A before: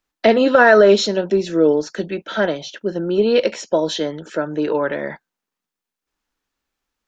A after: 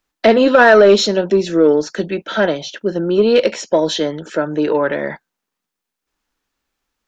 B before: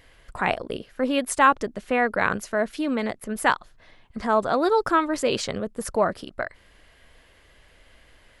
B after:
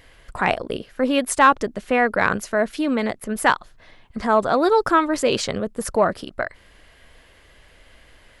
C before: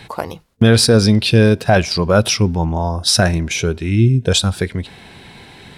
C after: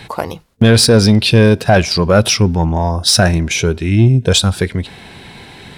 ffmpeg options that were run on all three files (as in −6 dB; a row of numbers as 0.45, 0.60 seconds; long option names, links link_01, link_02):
-af "acontrast=22,volume=-1dB"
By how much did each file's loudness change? +3.0, +3.5, +2.5 LU